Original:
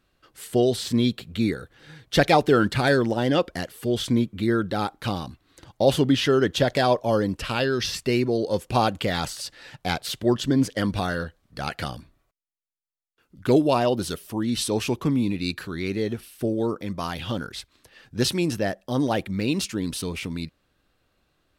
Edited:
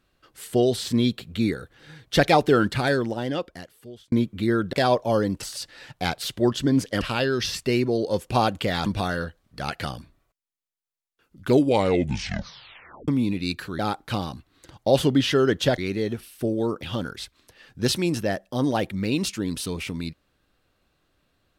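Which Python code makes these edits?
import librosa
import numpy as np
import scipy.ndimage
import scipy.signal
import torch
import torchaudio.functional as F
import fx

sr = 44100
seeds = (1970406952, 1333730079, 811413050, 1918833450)

y = fx.edit(x, sr, fx.fade_out_span(start_s=2.51, length_s=1.61),
    fx.move(start_s=4.73, length_s=1.99, to_s=15.78),
    fx.move(start_s=9.26, length_s=1.59, to_s=7.41),
    fx.tape_stop(start_s=13.52, length_s=1.55),
    fx.cut(start_s=16.83, length_s=0.36), tone=tone)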